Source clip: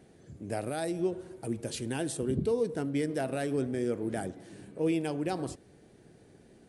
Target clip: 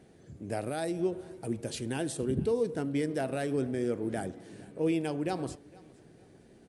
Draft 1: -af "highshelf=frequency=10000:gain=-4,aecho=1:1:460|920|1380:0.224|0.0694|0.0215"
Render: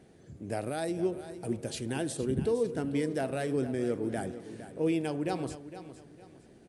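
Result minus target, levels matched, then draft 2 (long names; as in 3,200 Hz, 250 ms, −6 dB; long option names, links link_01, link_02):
echo-to-direct +10.5 dB
-af "highshelf=frequency=10000:gain=-4,aecho=1:1:460|920:0.0668|0.0207"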